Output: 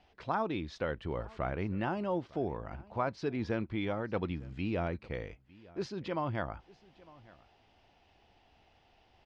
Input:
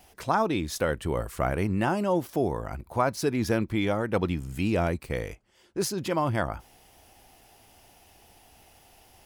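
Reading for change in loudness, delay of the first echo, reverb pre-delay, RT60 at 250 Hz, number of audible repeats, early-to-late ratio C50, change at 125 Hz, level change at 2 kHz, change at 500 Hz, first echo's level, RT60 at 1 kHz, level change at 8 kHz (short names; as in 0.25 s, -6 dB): -8.0 dB, 0.905 s, none, none, 1, none, -8.0 dB, -8.0 dB, -8.0 dB, -22.5 dB, none, under -20 dB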